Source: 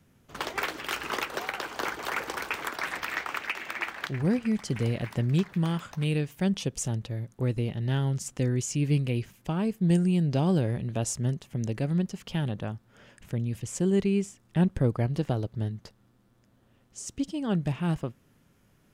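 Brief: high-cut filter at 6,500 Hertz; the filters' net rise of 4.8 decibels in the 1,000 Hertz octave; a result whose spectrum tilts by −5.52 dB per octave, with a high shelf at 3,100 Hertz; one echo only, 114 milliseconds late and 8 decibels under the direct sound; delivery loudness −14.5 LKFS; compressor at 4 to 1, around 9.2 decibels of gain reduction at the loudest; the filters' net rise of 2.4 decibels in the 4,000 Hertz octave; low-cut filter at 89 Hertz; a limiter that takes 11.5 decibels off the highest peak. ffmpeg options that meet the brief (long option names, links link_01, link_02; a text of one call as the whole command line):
ffmpeg -i in.wav -af "highpass=89,lowpass=6500,equalizer=frequency=1000:width_type=o:gain=6.5,highshelf=frequency=3100:gain=-5.5,equalizer=frequency=4000:width_type=o:gain=7.5,acompressor=threshold=-30dB:ratio=4,alimiter=level_in=3dB:limit=-24dB:level=0:latency=1,volume=-3dB,aecho=1:1:114:0.398,volume=22dB" out.wav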